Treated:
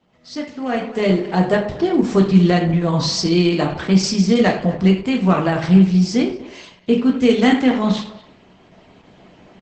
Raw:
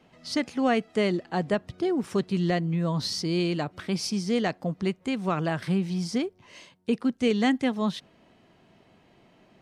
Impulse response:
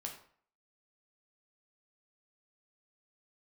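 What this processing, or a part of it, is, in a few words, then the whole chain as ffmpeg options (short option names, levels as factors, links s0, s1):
speakerphone in a meeting room: -filter_complex "[0:a]asplit=3[s0][s1][s2];[s0]afade=t=out:st=1.66:d=0.02[s3];[s1]equalizer=f=140:w=3.5:g=3,afade=t=in:st=1.66:d=0.02,afade=t=out:st=2.7:d=0.02[s4];[s2]afade=t=in:st=2.7:d=0.02[s5];[s3][s4][s5]amix=inputs=3:normalize=0[s6];[1:a]atrim=start_sample=2205[s7];[s6][s7]afir=irnorm=-1:irlink=0,asplit=2[s8][s9];[s9]adelay=240,highpass=300,lowpass=3400,asoftclip=type=hard:threshold=0.0668,volume=0.141[s10];[s8][s10]amix=inputs=2:normalize=0,dynaudnorm=f=650:g=3:m=5.96" -ar 48000 -c:a libopus -b:a 12k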